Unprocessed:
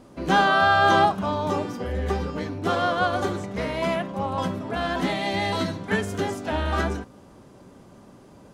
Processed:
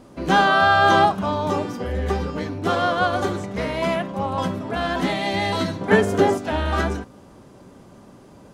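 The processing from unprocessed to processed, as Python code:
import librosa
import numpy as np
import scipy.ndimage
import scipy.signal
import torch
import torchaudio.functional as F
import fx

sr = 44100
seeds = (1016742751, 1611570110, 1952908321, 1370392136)

y = fx.peak_eq(x, sr, hz=530.0, db=9.0, octaves=2.8, at=(5.81, 6.38))
y = F.gain(torch.from_numpy(y), 2.5).numpy()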